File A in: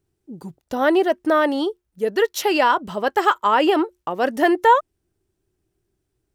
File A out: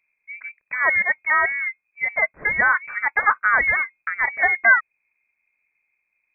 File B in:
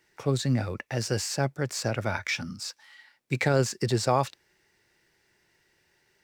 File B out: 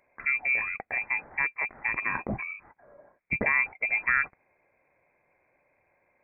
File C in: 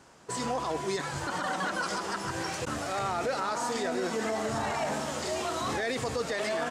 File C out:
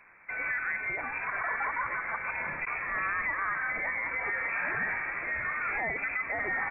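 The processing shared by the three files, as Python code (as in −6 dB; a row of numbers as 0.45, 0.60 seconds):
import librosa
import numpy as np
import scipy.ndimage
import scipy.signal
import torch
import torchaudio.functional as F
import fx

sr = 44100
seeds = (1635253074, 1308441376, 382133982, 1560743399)

y = fx.dynamic_eq(x, sr, hz=300.0, q=0.79, threshold_db=-33.0, ratio=4.0, max_db=-4)
y = fx.freq_invert(y, sr, carrier_hz=2500)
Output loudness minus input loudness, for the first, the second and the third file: 0.0, +1.0, +0.5 LU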